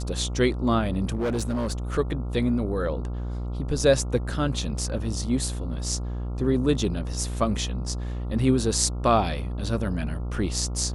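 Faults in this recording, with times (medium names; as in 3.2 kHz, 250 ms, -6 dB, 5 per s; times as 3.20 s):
buzz 60 Hz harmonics 23 -30 dBFS
1.13–1.72 s: clipped -22.5 dBFS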